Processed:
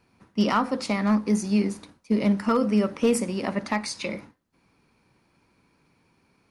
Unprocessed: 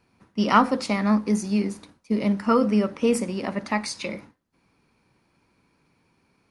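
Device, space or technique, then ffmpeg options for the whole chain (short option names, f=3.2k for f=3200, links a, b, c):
limiter into clipper: -filter_complex "[0:a]alimiter=limit=-12.5dB:level=0:latency=1:release=443,asoftclip=type=hard:threshold=-14.5dB,asettb=1/sr,asplit=3[a][b][c];[a]atrim=end=2.384[d];[b]atrim=start=2.38:end=3.52,asetpts=PTS-STARTPTS,afade=t=in:d=0.004:c=qsin,afade=t=out:st=1.136:d=0.004:c=qsin,highshelf=f=9.7k:g=6[e];[c]atrim=start=3.516[f];[d][e]acrossfade=d=0.004:c1=hsin:c2=qsin[g];[g][f]acrossfade=d=0.004:c1=qsin:c2=hsin,volume=1dB"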